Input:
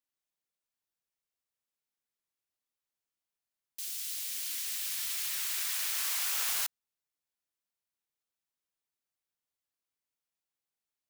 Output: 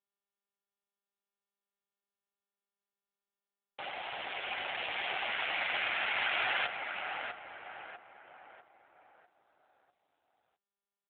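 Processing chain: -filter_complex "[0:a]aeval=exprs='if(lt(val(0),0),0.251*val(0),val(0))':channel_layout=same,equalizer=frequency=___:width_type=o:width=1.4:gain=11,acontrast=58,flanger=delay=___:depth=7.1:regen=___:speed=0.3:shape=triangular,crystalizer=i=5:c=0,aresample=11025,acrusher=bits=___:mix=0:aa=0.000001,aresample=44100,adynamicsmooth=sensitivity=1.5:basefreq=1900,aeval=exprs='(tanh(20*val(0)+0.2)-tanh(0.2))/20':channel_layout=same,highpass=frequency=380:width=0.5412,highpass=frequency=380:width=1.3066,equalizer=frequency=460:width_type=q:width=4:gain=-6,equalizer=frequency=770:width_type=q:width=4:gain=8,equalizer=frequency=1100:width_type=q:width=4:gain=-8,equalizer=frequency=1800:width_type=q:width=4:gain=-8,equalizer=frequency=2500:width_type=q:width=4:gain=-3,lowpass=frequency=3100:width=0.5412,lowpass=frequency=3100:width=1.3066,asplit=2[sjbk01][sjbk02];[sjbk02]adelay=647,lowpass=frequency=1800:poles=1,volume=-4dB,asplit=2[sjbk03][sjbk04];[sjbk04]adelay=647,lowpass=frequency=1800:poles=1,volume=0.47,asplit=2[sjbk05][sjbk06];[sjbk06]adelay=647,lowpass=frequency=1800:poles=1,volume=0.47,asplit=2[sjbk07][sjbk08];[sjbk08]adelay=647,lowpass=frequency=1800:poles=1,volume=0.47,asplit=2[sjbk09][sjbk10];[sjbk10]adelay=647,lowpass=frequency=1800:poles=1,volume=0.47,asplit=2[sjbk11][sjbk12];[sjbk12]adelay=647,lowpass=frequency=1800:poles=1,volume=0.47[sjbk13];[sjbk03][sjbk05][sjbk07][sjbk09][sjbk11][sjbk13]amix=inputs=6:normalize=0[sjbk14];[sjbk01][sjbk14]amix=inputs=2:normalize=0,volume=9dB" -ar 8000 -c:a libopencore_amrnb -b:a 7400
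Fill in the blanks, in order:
1800, 5.4, -61, 5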